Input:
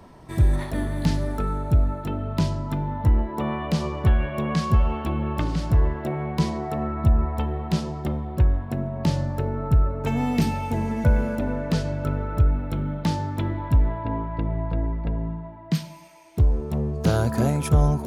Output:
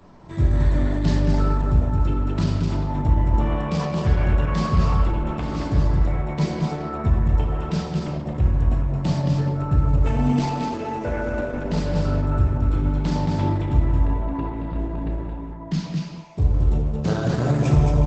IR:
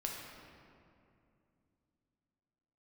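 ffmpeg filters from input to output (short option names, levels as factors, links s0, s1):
-filter_complex "[0:a]asplit=3[s0][s1][s2];[s0]afade=t=out:st=10.38:d=0.02[s3];[s1]lowshelf=f=240:t=q:w=1.5:g=-9.5,afade=t=in:st=10.38:d=0.02,afade=t=out:st=11.55:d=0.02[s4];[s2]afade=t=in:st=11.55:d=0.02[s5];[s3][s4][s5]amix=inputs=3:normalize=0,asplit=2[s6][s7];[s7]adelay=33,volume=0.224[s8];[s6][s8]amix=inputs=2:normalize=0,aecho=1:1:222:0.631[s9];[1:a]atrim=start_sample=2205,afade=t=out:st=0.3:d=0.01,atrim=end_sample=13671[s10];[s9][s10]afir=irnorm=-1:irlink=0" -ar 48000 -c:a libopus -b:a 12k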